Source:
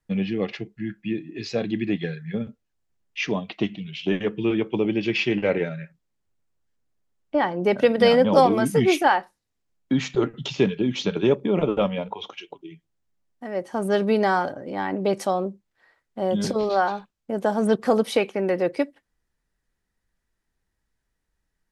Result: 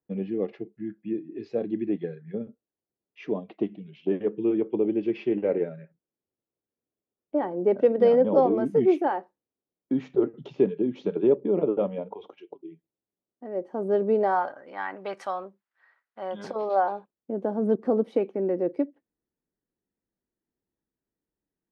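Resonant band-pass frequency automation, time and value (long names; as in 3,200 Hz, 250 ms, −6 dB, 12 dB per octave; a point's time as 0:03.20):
resonant band-pass, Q 1.4
0:14.14 390 Hz
0:14.57 1,400 Hz
0:16.21 1,400 Hz
0:17.31 320 Hz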